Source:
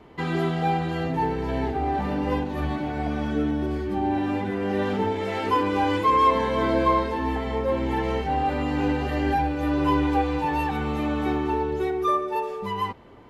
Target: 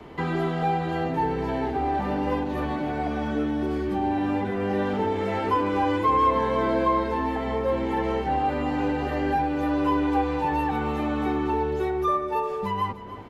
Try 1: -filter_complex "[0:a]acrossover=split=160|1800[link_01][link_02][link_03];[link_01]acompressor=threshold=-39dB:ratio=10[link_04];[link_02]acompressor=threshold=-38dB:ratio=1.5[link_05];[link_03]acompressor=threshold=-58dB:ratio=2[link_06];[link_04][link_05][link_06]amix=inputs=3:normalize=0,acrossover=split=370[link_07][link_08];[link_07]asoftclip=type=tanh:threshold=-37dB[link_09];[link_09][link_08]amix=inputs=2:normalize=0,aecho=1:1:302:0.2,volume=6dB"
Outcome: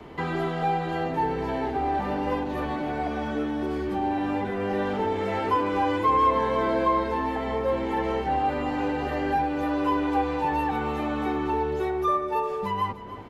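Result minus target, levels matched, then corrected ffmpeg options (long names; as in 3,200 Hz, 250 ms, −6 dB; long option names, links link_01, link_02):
soft clipping: distortion +7 dB
-filter_complex "[0:a]acrossover=split=160|1800[link_01][link_02][link_03];[link_01]acompressor=threshold=-39dB:ratio=10[link_04];[link_02]acompressor=threshold=-38dB:ratio=1.5[link_05];[link_03]acompressor=threshold=-58dB:ratio=2[link_06];[link_04][link_05][link_06]amix=inputs=3:normalize=0,acrossover=split=370[link_07][link_08];[link_07]asoftclip=type=tanh:threshold=-30dB[link_09];[link_09][link_08]amix=inputs=2:normalize=0,aecho=1:1:302:0.2,volume=6dB"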